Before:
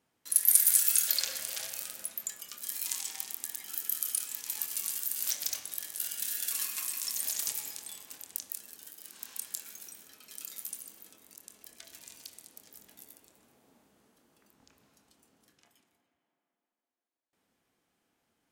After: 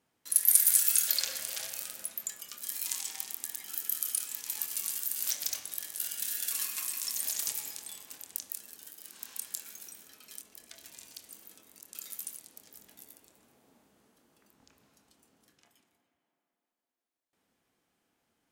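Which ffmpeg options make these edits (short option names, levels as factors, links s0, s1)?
-filter_complex "[0:a]asplit=5[s0][s1][s2][s3][s4];[s0]atrim=end=10.412[s5];[s1]atrim=start=11.498:end=12.382[s6];[s2]atrim=start=10.838:end=11.502[s7];[s3]atrim=start=10.408:end=10.842[s8];[s4]atrim=start=12.378[s9];[s5][s6]acrossfade=d=0.004:c1=hsin:c2=hsin[s10];[s10][s7]acrossfade=d=0.004:c1=hsin:c2=hsin[s11];[s11][s8]acrossfade=d=0.004:c1=hsin:c2=hsin[s12];[s12][s9]acrossfade=d=0.004:c1=hsin:c2=hsin"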